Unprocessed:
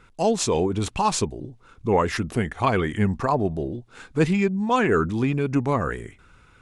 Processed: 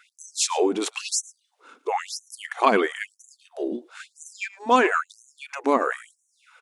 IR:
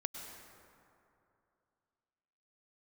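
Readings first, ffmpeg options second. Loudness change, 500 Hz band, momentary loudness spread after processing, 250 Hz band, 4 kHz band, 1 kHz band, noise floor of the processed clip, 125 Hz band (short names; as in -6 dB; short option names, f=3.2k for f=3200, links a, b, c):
-1.0 dB, -2.5 dB, 20 LU, -6.5 dB, +2.0 dB, +0.5 dB, -72 dBFS, under -25 dB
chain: -af "aecho=1:1:110:0.0891,afftfilt=real='re*gte(b*sr/1024,210*pow(5900/210,0.5+0.5*sin(2*PI*1*pts/sr)))':imag='im*gte(b*sr/1024,210*pow(5900/210,0.5+0.5*sin(2*PI*1*pts/sr)))':win_size=1024:overlap=0.75,volume=3.5dB"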